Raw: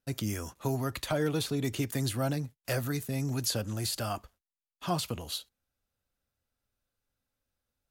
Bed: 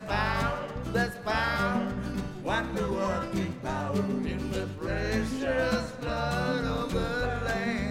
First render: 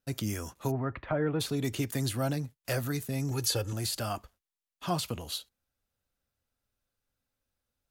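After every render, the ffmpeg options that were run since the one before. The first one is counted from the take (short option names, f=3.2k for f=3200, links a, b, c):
-filter_complex "[0:a]asplit=3[a][b][c];[a]afade=t=out:st=0.7:d=0.02[d];[b]lowpass=f=2.1k:w=0.5412,lowpass=f=2.1k:w=1.3066,afade=t=in:st=0.7:d=0.02,afade=t=out:st=1.39:d=0.02[e];[c]afade=t=in:st=1.39:d=0.02[f];[d][e][f]amix=inputs=3:normalize=0,asettb=1/sr,asplit=3[g][h][i];[g]atrim=end=3.314[j];[h]atrim=start=3.31:end=3.73,asetpts=PTS-STARTPTS,afade=t=in:d=0.004:c=qsin,afade=t=out:st=0.416:d=0.004:c=qsin,aecho=1:1:2.3:0.74,atrim=end_sample=18522[k];[i]atrim=start=3.726[l];[j][k]acrossfade=d=0.004:c1=hsin:c2=qsin[m];[m][l]acrossfade=d=0.004:c1=qsin:c2=hsin"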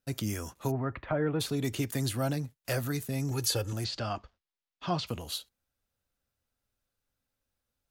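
-filter_complex "[0:a]asettb=1/sr,asplit=3[a][b][c];[a]atrim=end=3.844[d];[b]atrim=start=3.84:end=5.07,asetpts=PTS-STARTPTS,afade=t=in:d=0.004:c=qsin,afade=t=out:st=1.226:d=0.004:c=qsin,lowpass=f=5.3k:w=0.5412,lowpass=f=5.3k:w=1.3066[e];[c]atrim=start=5.066[f];[d][e]acrossfade=d=0.004:c1=hsin:c2=qsin[g];[g][f]acrossfade=d=0.004:c1=qsin:c2=hsin"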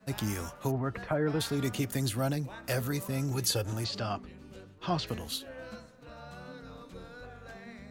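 -filter_complex "[1:a]volume=-17.5dB[a];[0:a][a]amix=inputs=2:normalize=0"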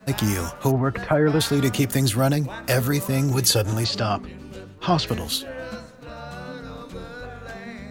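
-af "volume=10.5dB"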